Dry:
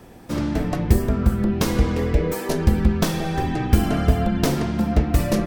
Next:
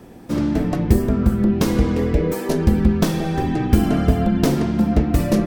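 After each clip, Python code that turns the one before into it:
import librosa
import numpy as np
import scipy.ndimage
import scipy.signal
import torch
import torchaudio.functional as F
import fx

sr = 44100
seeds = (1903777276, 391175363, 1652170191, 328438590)

y = fx.peak_eq(x, sr, hz=260.0, db=6.0, octaves=1.9)
y = y * 10.0 ** (-1.0 / 20.0)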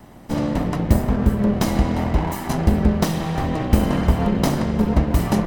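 y = fx.lower_of_two(x, sr, delay_ms=1.0)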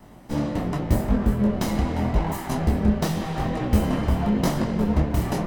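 y = fx.detune_double(x, sr, cents=30)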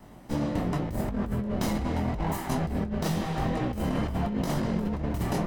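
y = fx.over_compress(x, sr, threshold_db=-24.0, ratio=-1.0)
y = y * 10.0 ** (-4.0 / 20.0)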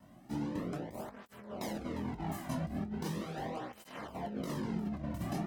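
y = fx.flanger_cancel(x, sr, hz=0.39, depth_ms=2.5)
y = y * 10.0 ** (-6.5 / 20.0)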